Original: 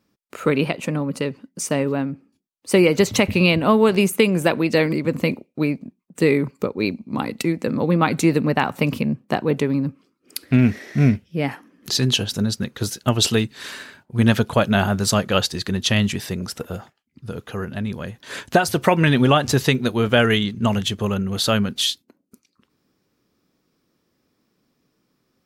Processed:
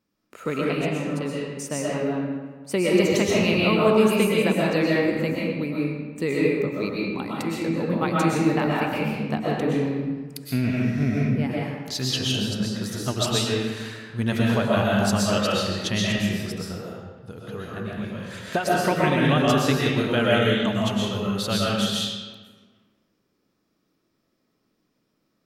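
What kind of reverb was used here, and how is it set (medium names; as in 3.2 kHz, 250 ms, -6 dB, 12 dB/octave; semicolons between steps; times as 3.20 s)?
algorithmic reverb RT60 1.4 s, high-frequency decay 0.7×, pre-delay 85 ms, DRR -5 dB; trim -9 dB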